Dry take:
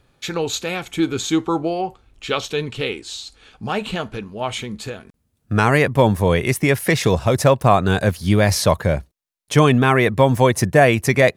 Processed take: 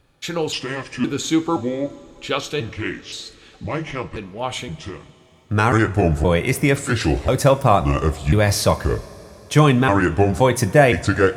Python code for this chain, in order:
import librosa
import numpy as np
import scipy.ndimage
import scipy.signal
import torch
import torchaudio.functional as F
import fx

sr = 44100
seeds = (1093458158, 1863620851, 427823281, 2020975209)

y = fx.pitch_trill(x, sr, semitones=-5.0, every_ms=520)
y = fx.rev_double_slope(y, sr, seeds[0], early_s=0.3, late_s=3.8, knee_db=-18, drr_db=9.5)
y = y * librosa.db_to_amplitude(-1.0)